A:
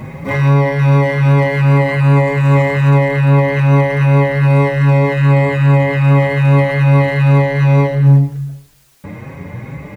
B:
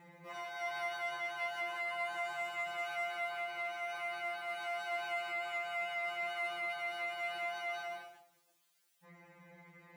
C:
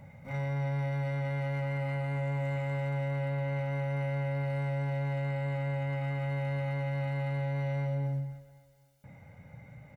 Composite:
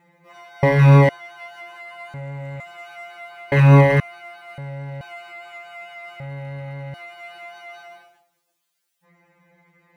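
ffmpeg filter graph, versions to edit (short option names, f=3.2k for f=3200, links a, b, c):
-filter_complex "[0:a]asplit=2[a][b];[2:a]asplit=3[c][d][e];[1:a]asplit=6[f][g][h][i][j][k];[f]atrim=end=0.632[l];[a]atrim=start=0.628:end=1.092[m];[g]atrim=start=1.088:end=2.142[n];[c]atrim=start=2.138:end=2.602[o];[h]atrim=start=2.598:end=3.522[p];[b]atrim=start=3.518:end=4.002[q];[i]atrim=start=3.998:end=4.582[r];[d]atrim=start=4.578:end=5.012[s];[j]atrim=start=5.008:end=6.202[t];[e]atrim=start=6.198:end=6.942[u];[k]atrim=start=6.938[v];[l][m]acrossfade=d=0.004:c1=hsin:c2=hsin[w];[w][n]acrossfade=d=0.004:c1=hsin:c2=hsin[x];[x][o]acrossfade=d=0.004:c1=hsin:c2=hsin[y];[y][p]acrossfade=d=0.004:c1=hsin:c2=hsin[z];[z][q]acrossfade=d=0.004:c1=hsin:c2=hsin[aa];[aa][r]acrossfade=d=0.004:c1=hsin:c2=hsin[ab];[ab][s]acrossfade=d=0.004:c1=hsin:c2=hsin[ac];[ac][t]acrossfade=d=0.004:c1=hsin:c2=hsin[ad];[ad][u]acrossfade=d=0.004:c1=hsin:c2=hsin[ae];[ae][v]acrossfade=d=0.004:c1=hsin:c2=hsin"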